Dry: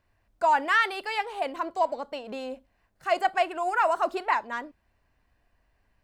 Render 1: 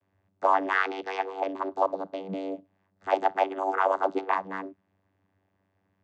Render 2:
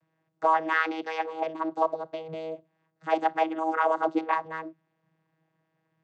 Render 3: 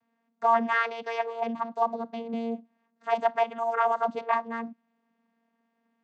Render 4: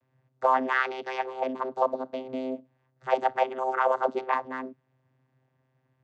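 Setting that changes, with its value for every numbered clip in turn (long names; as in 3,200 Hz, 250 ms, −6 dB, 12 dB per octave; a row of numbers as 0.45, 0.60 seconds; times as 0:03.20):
channel vocoder, frequency: 96, 160, 230, 130 Hertz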